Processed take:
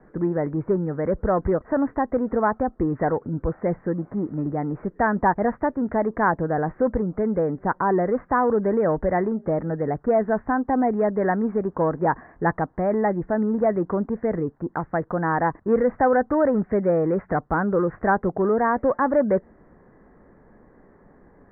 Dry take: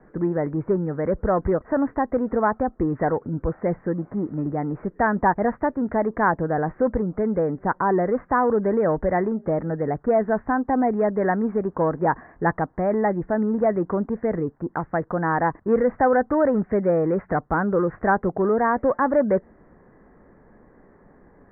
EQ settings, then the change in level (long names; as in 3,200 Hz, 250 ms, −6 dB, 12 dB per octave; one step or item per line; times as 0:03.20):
high-frequency loss of the air 97 metres
0.0 dB